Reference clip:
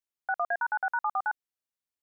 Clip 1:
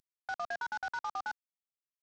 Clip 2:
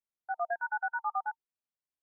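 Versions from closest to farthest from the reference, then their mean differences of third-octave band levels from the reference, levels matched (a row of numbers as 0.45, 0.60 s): 2, 1; 2.5, 11.5 dB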